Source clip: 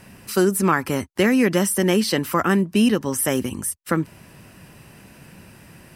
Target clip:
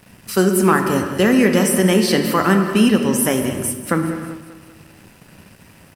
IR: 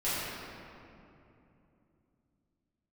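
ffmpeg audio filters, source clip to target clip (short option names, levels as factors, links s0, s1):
-filter_complex "[0:a]asettb=1/sr,asplit=3[s0][s1][s2];[s0]atrim=end=0.714[s3];[s1]atrim=start=0.71:end=1.35,asetpts=PTS-STARTPTS,afade=t=in:d=0.004:c=qsin,afade=t=out:st=0.636:d=0.004:c=qsin,bandreject=f=2200:w=5.5[s4];[s2]atrim=start=1.346[s5];[s3][s4]acrossfade=d=0.004:c1=hsin:c2=qsin[s6];[s6][s5]acrossfade=d=0.004:c1=qsin:c2=hsin,asplit=2[s7][s8];[1:a]atrim=start_sample=2205,afade=t=out:st=0.42:d=0.01,atrim=end_sample=18963[s9];[s8][s9]afir=irnorm=-1:irlink=0,volume=0.251[s10];[s7][s10]amix=inputs=2:normalize=0,aeval=exprs='sgn(val(0))*max(abs(val(0))-0.00422,0)':c=same,aecho=1:1:195|390|585|780|975:0.188|0.0961|0.049|0.025|0.0127,volume=1.19"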